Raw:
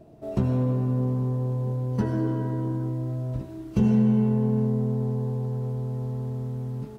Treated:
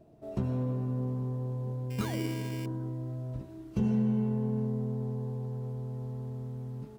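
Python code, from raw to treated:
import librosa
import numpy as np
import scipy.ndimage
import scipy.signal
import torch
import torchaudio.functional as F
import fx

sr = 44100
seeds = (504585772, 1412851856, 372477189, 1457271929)

y = fx.spec_paint(x, sr, seeds[0], shape='fall', start_s=2.0, length_s=0.27, low_hz=250.0, high_hz=1500.0, level_db=-35.0)
y = fx.sample_hold(y, sr, seeds[1], rate_hz=2600.0, jitter_pct=0, at=(1.9, 2.66))
y = y * 10.0 ** (-7.5 / 20.0)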